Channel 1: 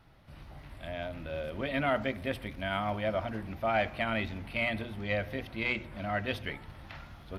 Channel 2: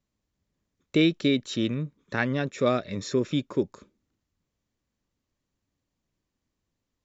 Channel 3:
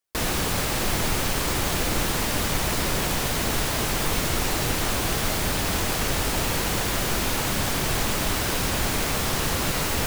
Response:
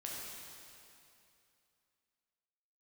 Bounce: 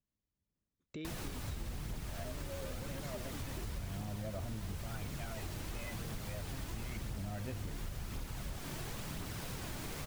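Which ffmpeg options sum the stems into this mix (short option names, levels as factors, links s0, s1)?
-filter_complex "[0:a]aemphasis=mode=reproduction:type=riaa,acompressor=threshold=0.0178:ratio=6,aphaser=in_gain=1:out_gain=1:delay=2:decay=0.69:speed=0.32:type=sinusoidal,adelay=1200,volume=0.794[s0];[1:a]lowshelf=f=320:g=5,alimiter=limit=0.0944:level=0:latency=1,volume=0.2[s1];[2:a]aphaser=in_gain=1:out_gain=1:delay=3.5:decay=0.3:speed=0.96:type=triangular,equalizer=f=140:t=o:w=1.5:g=8.5,adelay=900,volume=0.178[s2];[s0][s1][s2]amix=inputs=3:normalize=0,acompressor=threshold=0.0112:ratio=5"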